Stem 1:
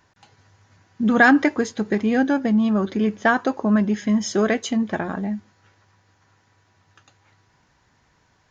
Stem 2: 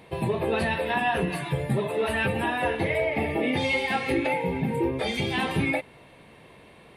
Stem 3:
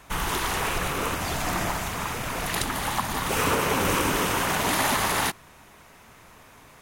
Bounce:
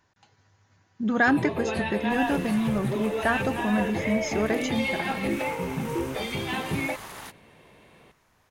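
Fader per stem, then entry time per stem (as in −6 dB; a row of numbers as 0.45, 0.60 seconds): −7.0, −3.5, −16.5 decibels; 0.00, 1.15, 2.00 seconds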